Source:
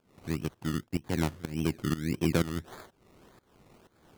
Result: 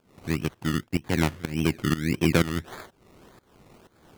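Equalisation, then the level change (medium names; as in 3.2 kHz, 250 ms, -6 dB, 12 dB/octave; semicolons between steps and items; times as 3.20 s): dynamic bell 2.2 kHz, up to +5 dB, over -53 dBFS, Q 1.1; +5.0 dB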